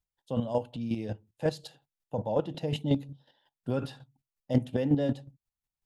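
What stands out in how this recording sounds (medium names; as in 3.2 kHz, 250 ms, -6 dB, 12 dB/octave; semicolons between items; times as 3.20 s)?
chopped level 5.5 Hz, depth 60%, duty 20%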